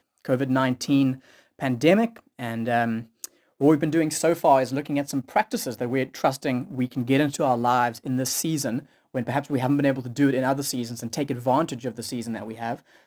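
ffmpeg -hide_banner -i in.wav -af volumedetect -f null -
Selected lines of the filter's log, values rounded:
mean_volume: -24.4 dB
max_volume: -5.2 dB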